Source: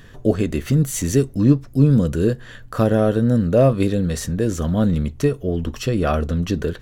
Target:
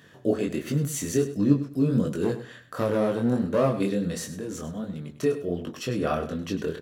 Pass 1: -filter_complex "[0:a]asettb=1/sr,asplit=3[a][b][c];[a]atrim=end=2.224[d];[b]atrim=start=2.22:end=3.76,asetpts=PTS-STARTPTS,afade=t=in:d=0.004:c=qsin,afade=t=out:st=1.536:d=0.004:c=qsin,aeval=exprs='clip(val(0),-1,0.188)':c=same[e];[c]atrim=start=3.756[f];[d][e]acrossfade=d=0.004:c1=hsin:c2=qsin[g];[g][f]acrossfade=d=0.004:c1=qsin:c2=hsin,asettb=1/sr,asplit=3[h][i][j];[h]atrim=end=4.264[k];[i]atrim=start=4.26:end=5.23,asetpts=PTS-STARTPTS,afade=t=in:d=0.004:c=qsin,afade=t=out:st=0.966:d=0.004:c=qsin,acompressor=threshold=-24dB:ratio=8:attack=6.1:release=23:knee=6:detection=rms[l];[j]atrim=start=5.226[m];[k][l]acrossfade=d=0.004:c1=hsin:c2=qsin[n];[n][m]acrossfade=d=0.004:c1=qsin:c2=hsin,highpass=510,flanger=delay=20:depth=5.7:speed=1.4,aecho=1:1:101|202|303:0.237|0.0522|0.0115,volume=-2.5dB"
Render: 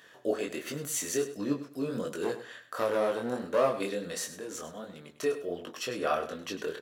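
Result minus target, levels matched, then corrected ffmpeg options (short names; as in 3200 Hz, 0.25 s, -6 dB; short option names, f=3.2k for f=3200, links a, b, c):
125 Hz band -11.5 dB
-filter_complex "[0:a]asettb=1/sr,asplit=3[a][b][c];[a]atrim=end=2.224[d];[b]atrim=start=2.22:end=3.76,asetpts=PTS-STARTPTS,afade=t=in:d=0.004:c=qsin,afade=t=out:st=1.536:d=0.004:c=qsin,aeval=exprs='clip(val(0),-1,0.188)':c=same[e];[c]atrim=start=3.756[f];[d][e]acrossfade=d=0.004:c1=hsin:c2=qsin[g];[g][f]acrossfade=d=0.004:c1=qsin:c2=hsin,asettb=1/sr,asplit=3[h][i][j];[h]atrim=end=4.264[k];[i]atrim=start=4.26:end=5.23,asetpts=PTS-STARTPTS,afade=t=in:d=0.004:c=qsin,afade=t=out:st=0.966:d=0.004:c=qsin,acompressor=threshold=-24dB:ratio=8:attack=6.1:release=23:knee=6:detection=rms[l];[j]atrim=start=5.226[m];[k][l]acrossfade=d=0.004:c1=hsin:c2=qsin[n];[n][m]acrossfade=d=0.004:c1=qsin:c2=hsin,highpass=170,flanger=delay=20:depth=5.7:speed=1.4,aecho=1:1:101|202|303:0.237|0.0522|0.0115,volume=-2.5dB"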